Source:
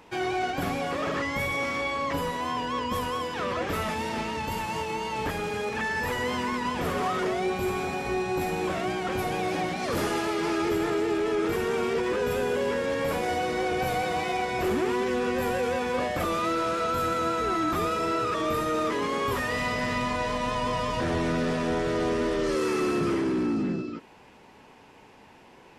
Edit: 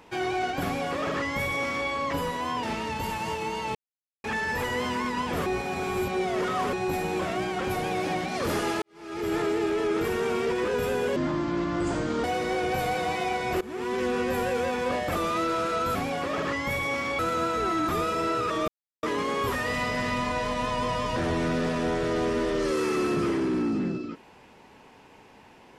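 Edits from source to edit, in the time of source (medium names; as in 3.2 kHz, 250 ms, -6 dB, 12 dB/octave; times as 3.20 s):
0.64–1.88 s: copy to 17.03 s
2.63–4.11 s: delete
5.23–5.72 s: mute
6.94–8.21 s: reverse
10.30–10.82 s: fade in quadratic
12.64–13.32 s: speed 63%
14.69–15.10 s: fade in linear, from -21.5 dB
18.52–18.87 s: mute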